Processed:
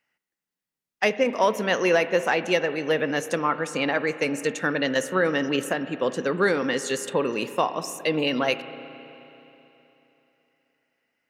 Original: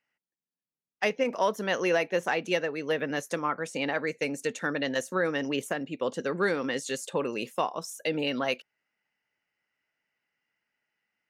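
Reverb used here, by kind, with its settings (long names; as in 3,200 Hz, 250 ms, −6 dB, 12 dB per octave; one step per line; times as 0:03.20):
spring reverb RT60 3.3 s, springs 32/53 ms, chirp 80 ms, DRR 12 dB
level +5 dB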